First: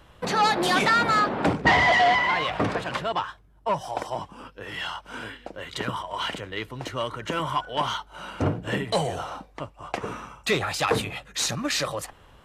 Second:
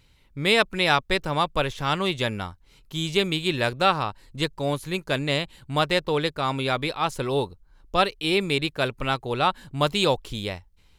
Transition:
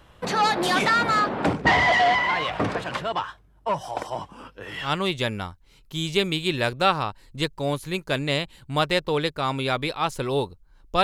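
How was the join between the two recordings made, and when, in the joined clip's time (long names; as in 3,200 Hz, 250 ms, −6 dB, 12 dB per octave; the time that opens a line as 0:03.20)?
first
0:04.86: continue with second from 0:01.86, crossfade 0.12 s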